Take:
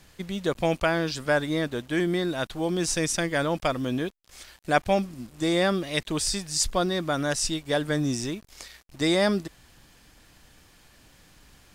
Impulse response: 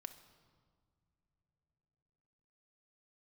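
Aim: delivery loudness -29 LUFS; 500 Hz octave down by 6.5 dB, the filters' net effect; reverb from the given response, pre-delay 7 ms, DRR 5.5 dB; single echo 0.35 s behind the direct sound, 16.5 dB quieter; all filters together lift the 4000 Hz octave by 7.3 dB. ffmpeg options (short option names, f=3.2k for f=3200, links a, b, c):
-filter_complex "[0:a]equalizer=f=500:t=o:g=-9,equalizer=f=4k:t=o:g=9,aecho=1:1:350:0.15,asplit=2[a][b];[1:a]atrim=start_sample=2205,adelay=7[c];[b][c]afir=irnorm=-1:irlink=0,volume=-0.5dB[d];[a][d]amix=inputs=2:normalize=0,volume=-4.5dB"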